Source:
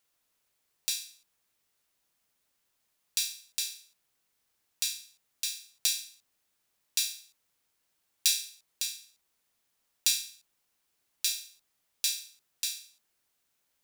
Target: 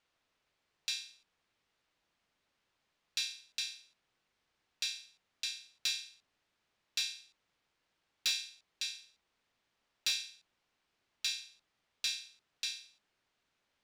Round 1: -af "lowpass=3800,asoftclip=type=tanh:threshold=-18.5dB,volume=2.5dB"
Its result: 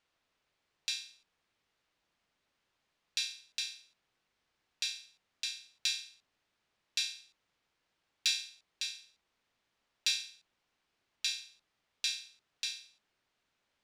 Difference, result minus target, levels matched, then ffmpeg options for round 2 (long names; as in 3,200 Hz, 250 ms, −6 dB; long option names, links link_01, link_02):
soft clipping: distortion −10 dB
-af "lowpass=3800,asoftclip=type=tanh:threshold=-26.5dB,volume=2.5dB"